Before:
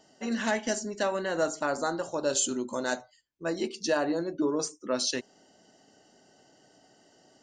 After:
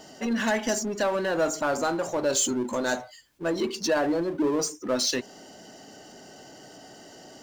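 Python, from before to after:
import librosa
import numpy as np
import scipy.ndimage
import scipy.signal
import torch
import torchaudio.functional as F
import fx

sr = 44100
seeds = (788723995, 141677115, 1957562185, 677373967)

y = fx.spec_gate(x, sr, threshold_db=-30, keep='strong')
y = fx.power_curve(y, sr, exponent=0.7)
y = fx.quant_dither(y, sr, seeds[0], bits=12, dither='none')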